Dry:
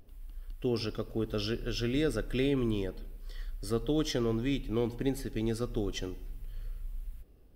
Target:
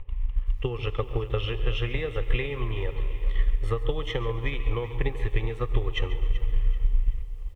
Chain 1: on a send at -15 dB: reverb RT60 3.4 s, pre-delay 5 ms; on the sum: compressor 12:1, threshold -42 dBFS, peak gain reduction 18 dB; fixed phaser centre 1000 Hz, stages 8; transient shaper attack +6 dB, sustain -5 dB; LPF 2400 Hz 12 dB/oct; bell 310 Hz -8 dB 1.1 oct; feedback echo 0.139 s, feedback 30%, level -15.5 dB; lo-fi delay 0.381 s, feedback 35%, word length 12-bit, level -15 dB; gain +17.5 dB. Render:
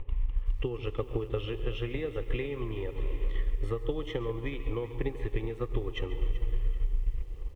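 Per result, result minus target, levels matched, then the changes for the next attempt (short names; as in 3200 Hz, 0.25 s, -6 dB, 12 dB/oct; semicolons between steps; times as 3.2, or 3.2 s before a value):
compressor: peak gain reduction +8.5 dB; 250 Hz band +5.5 dB
change: compressor 12:1, threshold -32.5 dBFS, peak gain reduction 9.5 dB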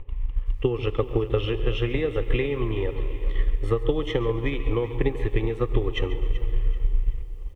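250 Hz band +6.0 dB
change: bell 310 Hz -20 dB 1.1 oct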